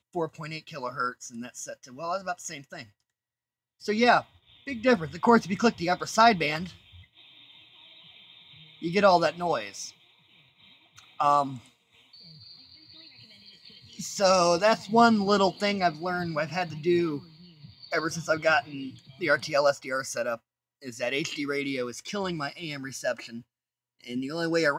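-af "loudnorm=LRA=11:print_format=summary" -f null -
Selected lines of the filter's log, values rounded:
Input Integrated:    -26.8 LUFS
Input True Peak:      -6.5 dBTP
Input LRA:             8.2 LU
Input Threshold:     -38.4 LUFS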